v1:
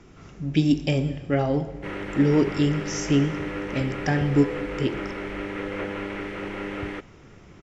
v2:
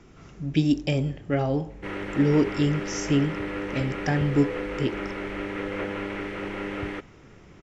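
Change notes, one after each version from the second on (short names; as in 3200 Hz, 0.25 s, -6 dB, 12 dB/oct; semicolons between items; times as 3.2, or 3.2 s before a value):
speech: send off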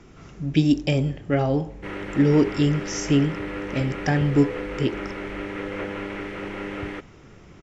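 speech +3.0 dB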